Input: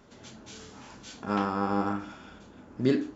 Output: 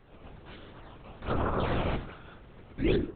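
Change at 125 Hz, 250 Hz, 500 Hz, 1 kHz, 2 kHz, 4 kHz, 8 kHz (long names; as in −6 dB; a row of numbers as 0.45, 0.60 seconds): +3.0 dB, −4.0 dB, −0.5 dB, −4.0 dB, +0.5 dB, +1.0 dB, can't be measured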